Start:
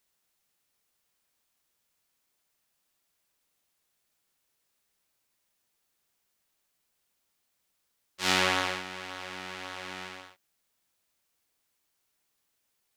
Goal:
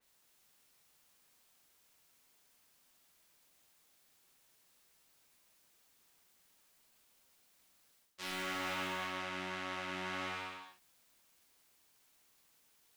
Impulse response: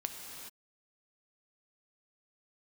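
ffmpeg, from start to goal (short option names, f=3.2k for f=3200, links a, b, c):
-filter_complex "[0:a]asplit=2[a][b];[b]aeval=exprs='(mod(7.5*val(0)+1,2)-1)/7.5':c=same,volume=-7dB[c];[a][c]amix=inputs=2:normalize=0,bandreject=f=50:t=h:w=6,bandreject=f=100:t=h:w=6[d];[1:a]atrim=start_sample=2205[e];[d][e]afir=irnorm=-1:irlink=0,asoftclip=type=hard:threshold=-18.5dB,areverse,acompressor=threshold=-38dB:ratio=10,areverse,adynamicequalizer=threshold=0.00141:dfrequency=3400:dqfactor=0.7:tfrequency=3400:tqfactor=0.7:attack=5:release=100:ratio=0.375:range=3:mode=cutabove:tftype=highshelf,volume=3dB"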